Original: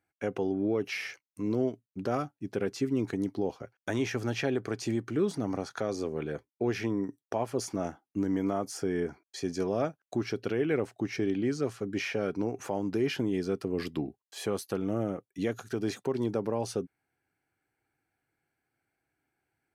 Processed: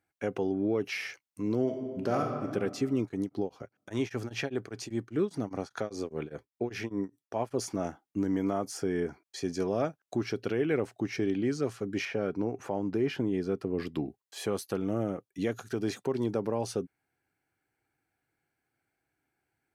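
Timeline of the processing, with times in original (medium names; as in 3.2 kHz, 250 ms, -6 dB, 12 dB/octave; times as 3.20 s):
1.62–2.50 s: reverb throw, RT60 1.8 s, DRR 2 dB
3.00–7.54 s: tremolo of two beating tones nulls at 5 Hz
12.05–13.95 s: treble shelf 3.1 kHz -9.5 dB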